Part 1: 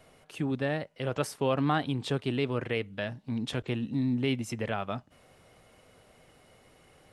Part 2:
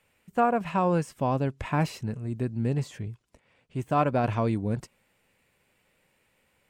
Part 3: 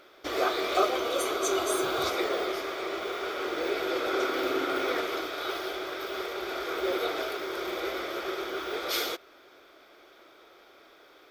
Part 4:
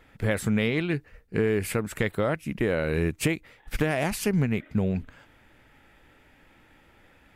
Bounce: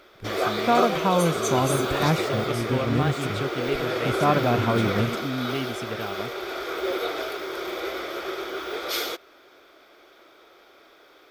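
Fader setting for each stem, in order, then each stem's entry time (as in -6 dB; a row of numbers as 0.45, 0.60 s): -1.5, +2.5, +2.0, -10.5 dB; 1.30, 0.30, 0.00, 0.00 s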